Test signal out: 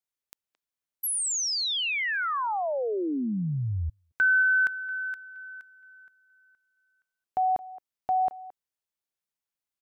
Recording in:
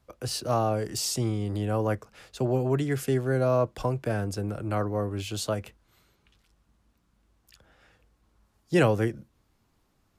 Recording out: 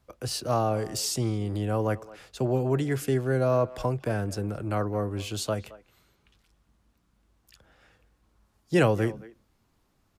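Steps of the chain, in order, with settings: speakerphone echo 220 ms, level -18 dB

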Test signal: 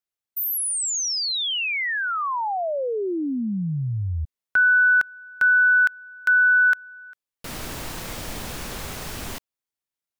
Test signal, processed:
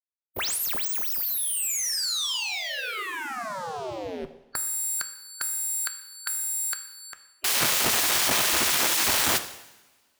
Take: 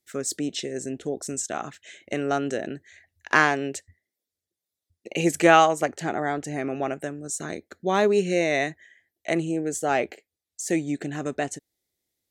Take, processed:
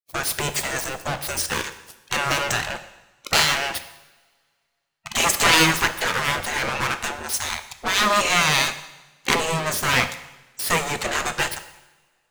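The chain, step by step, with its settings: waveshaping leveller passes 5; spectral gate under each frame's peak -15 dB weak; two-slope reverb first 0.91 s, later 2.3 s, from -21 dB, DRR 9 dB; trim -1 dB

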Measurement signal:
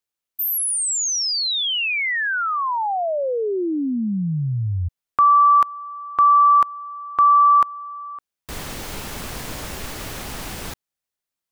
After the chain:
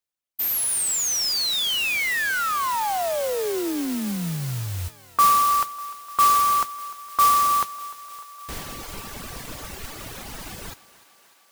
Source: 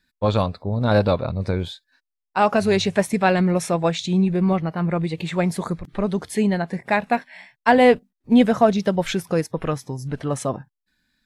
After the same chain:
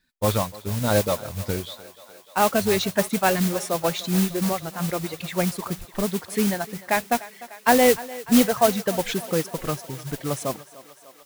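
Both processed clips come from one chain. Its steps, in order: reverb removal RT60 1.8 s; modulation noise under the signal 10 dB; thinning echo 299 ms, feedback 75%, high-pass 310 Hz, level -17.5 dB; trim -2 dB

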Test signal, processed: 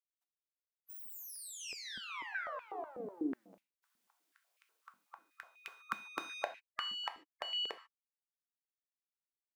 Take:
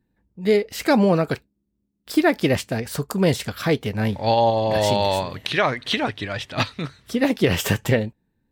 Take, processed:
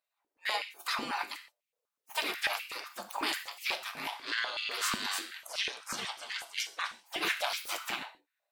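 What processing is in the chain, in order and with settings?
single-diode clipper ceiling -7.5 dBFS; spectral gate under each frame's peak -25 dB weak; gain riding 2 s; gated-style reverb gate 170 ms falling, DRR 6.5 dB; step-sequenced high-pass 8.1 Hz 220–2400 Hz

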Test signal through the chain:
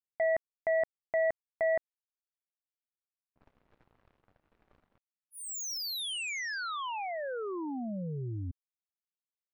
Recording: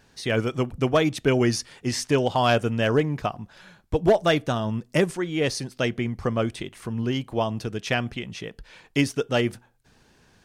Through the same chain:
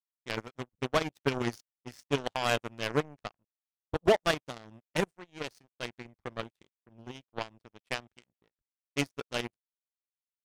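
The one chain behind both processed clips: level-controlled noise filter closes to 600 Hz, open at -22.5 dBFS; power-law waveshaper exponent 3; trim -2 dB

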